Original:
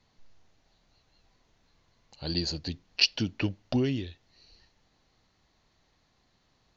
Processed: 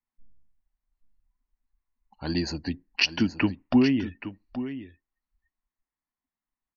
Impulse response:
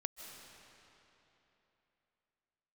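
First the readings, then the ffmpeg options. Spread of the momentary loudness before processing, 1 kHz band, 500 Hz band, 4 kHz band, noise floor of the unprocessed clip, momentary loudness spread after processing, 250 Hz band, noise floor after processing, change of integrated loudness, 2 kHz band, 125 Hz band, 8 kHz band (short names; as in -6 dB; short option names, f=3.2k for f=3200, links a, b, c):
12 LU, +8.0 dB, +3.0 dB, -2.0 dB, -70 dBFS, 15 LU, +8.0 dB, under -85 dBFS, +3.0 dB, +5.5 dB, +0.5 dB, n/a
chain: -af "equalizer=f=125:t=o:w=1:g=-6,equalizer=f=250:t=o:w=1:g=8,equalizer=f=500:t=o:w=1:g=-6,equalizer=f=1k:t=o:w=1:g=8,equalizer=f=2k:t=o:w=1:g=7,equalizer=f=4k:t=o:w=1:g=-9,afftdn=nr=33:nf=-48,aecho=1:1:824:0.237,volume=3dB"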